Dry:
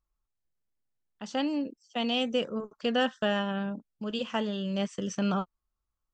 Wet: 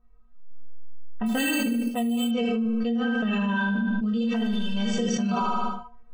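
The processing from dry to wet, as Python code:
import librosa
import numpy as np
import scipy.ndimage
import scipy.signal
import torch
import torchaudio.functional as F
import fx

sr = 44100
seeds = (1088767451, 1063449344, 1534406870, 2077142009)

y = fx.law_mismatch(x, sr, coded='mu', at=(4.3, 4.73))
y = fx.env_lowpass(y, sr, base_hz=1200.0, full_db=-26.0)
y = fx.low_shelf(y, sr, hz=360.0, db=4.0)
y = fx.stiff_resonator(y, sr, f0_hz=230.0, decay_s=0.44, stiffness=0.008)
y = fx.chorus_voices(y, sr, voices=6, hz=0.57, base_ms=26, depth_ms=4.2, mix_pct=35)
y = fx.rider(y, sr, range_db=3, speed_s=0.5)
y = fx.dynamic_eq(y, sr, hz=210.0, q=4.2, threshold_db=-52.0, ratio=4.0, max_db=7)
y = fx.echo_feedback(y, sr, ms=76, feedback_pct=44, wet_db=-6)
y = fx.resample_bad(y, sr, factor=4, down='filtered', up='hold', at=(1.26, 2.31))
y = fx.lowpass(y, sr, hz=2200.0, slope=6, at=(3.0, 3.55))
y = fx.env_flatten(y, sr, amount_pct=100)
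y = y * librosa.db_to_amplitude(3.0)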